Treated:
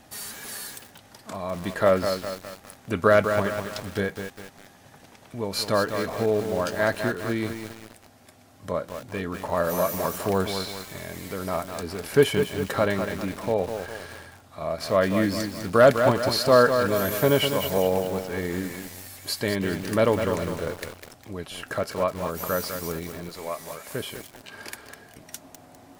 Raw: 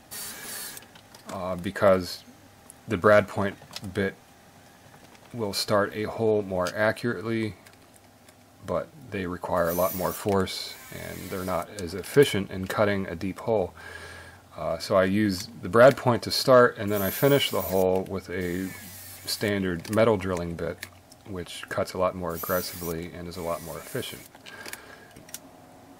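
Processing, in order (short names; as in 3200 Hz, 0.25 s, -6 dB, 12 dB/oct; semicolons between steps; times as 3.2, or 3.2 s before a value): 23.29–23.92 low shelf 280 Hz -11 dB; lo-fi delay 0.202 s, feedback 55%, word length 6-bit, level -6.5 dB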